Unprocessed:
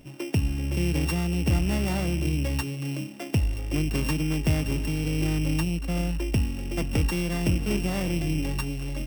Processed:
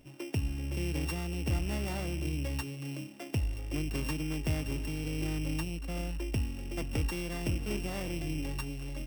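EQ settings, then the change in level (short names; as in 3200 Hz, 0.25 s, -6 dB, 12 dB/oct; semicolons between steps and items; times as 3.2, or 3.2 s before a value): bell 180 Hz -5.5 dB 0.48 oct; -7.0 dB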